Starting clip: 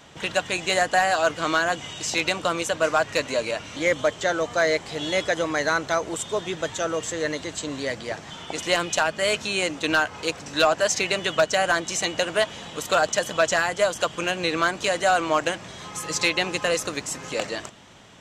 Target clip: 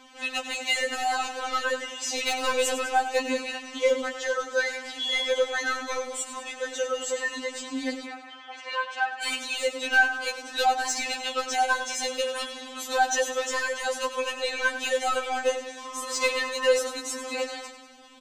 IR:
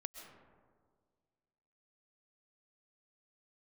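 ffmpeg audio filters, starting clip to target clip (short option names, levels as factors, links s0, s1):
-filter_complex "[0:a]asettb=1/sr,asplit=3[s0][s1][s2];[s0]atrim=end=2.224[s3];[s1]atrim=start=2.22:end=2.81,asetpts=PTS-STARTPTS,afade=t=in:d=0.004:c=qsin,afade=t=out:st=0.586:d=0.004:c=qsin,acontrast=42[s4];[s2]atrim=start=2.806[s5];[s3][s4]acrossfade=d=0.004:c1=hsin:c2=qsin[s6];[s6][s5]acrossfade=d=0.004:c1=qsin:c2=hsin,asoftclip=type=tanh:threshold=0.188,asplit=3[s7][s8][s9];[s7]afade=t=out:st=8.05:d=0.02[s10];[s8]highpass=720,lowpass=2400,afade=t=in:st=8.05:d=0.02,afade=t=out:st=9.21:d=0.02[s11];[s9]afade=t=in:st=9.21:d=0.02[s12];[s10][s11][s12]amix=inputs=3:normalize=0,aecho=1:1:100|200|300|400|500|600:0.266|0.149|0.0834|0.0467|0.0262|0.0147,afftfilt=real='re*3.46*eq(mod(b,12),0)':imag='im*3.46*eq(mod(b,12),0)':win_size=2048:overlap=0.75"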